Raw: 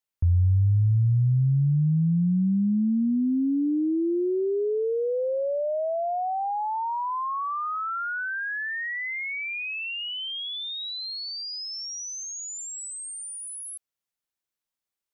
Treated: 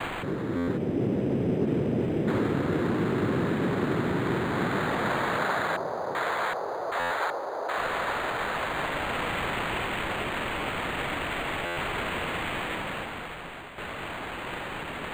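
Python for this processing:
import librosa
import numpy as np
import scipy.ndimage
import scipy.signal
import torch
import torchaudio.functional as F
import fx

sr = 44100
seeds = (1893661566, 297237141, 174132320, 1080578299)

y = np.sign(x) * np.sqrt(np.mean(np.square(x)))
y = fx.spec_erase(y, sr, start_s=0.77, length_s=1.5, low_hz=270.0, high_hz=2700.0)
y = fx.dereverb_blind(y, sr, rt60_s=0.78)
y = fx.rider(y, sr, range_db=4, speed_s=0.5)
y = fx.noise_vocoder(y, sr, seeds[0], bands=3)
y = fx.filter_lfo_lowpass(y, sr, shape='square', hz=1.3, low_hz=710.0, high_hz=2200.0, q=0.98, at=(5.38, 7.78))
y = fx.buffer_glitch(y, sr, at_s=(0.56, 6.99, 11.65), block=512, repeats=9)
y = np.interp(np.arange(len(y)), np.arange(len(y))[::8], y[::8])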